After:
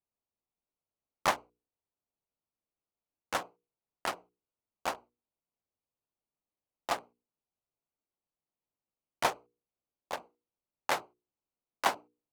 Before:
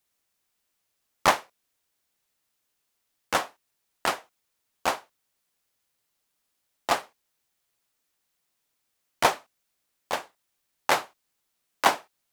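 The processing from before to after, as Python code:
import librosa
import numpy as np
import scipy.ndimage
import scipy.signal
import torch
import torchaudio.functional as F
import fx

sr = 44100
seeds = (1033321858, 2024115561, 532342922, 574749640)

y = fx.wiener(x, sr, points=25)
y = fx.hum_notches(y, sr, base_hz=60, count=8)
y = y * librosa.db_to_amplitude(-7.5)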